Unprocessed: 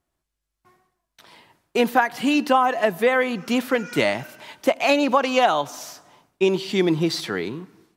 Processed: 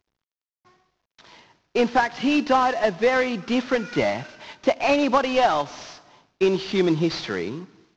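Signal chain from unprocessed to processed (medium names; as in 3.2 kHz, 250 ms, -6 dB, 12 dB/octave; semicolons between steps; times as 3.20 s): CVSD coder 32 kbps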